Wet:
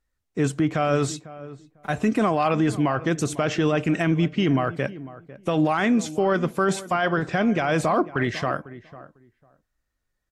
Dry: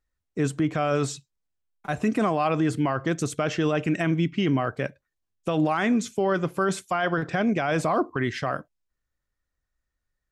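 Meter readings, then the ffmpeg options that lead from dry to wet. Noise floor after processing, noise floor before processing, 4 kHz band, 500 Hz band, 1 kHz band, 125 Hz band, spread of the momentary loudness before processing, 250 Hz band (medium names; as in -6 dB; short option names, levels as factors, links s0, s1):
-78 dBFS, -83 dBFS, +2.5 dB, +2.5 dB, +2.5 dB, +2.5 dB, 8 LU, +2.5 dB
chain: -filter_complex "[0:a]acontrast=36,asplit=2[s0][s1];[s1]adelay=499,lowpass=f=1200:p=1,volume=0.158,asplit=2[s2][s3];[s3]adelay=499,lowpass=f=1200:p=1,volume=0.18[s4];[s0][s2][s4]amix=inputs=3:normalize=0,volume=0.708" -ar 44100 -c:a aac -b:a 48k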